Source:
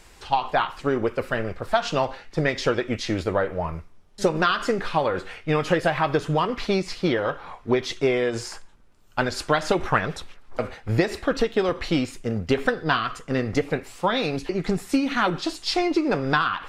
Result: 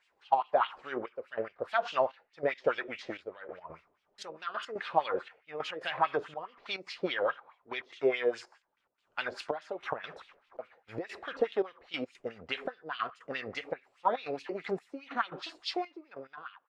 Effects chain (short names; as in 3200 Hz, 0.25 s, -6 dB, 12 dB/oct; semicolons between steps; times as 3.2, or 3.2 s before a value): ending faded out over 1.39 s; wah 4.8 Hz 490–3200 Hz, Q 2.4; step gate "...x.xxxxx" 142 bpm -12 dB